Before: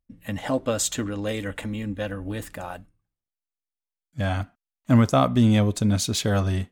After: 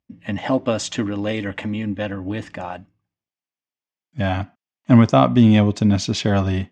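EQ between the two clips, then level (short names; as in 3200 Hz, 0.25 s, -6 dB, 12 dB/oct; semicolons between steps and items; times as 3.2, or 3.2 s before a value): speaker cabinet 110–5300 Hz, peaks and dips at 480 Hz -5 dB, 1400 Hz -6 dB, 4000 Hz -8 dB; +6.5 dB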